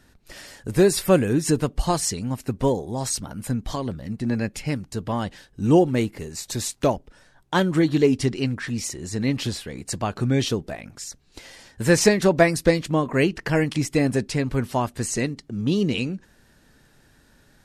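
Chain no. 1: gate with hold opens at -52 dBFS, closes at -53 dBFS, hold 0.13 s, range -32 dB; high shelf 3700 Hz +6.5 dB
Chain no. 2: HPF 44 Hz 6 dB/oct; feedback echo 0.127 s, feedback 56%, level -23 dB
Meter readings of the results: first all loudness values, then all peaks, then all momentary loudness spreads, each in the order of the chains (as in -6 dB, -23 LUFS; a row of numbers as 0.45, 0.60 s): -22.5, -23.5 LUFS; -3.0, -3.5 dBFS; 13, 13 LU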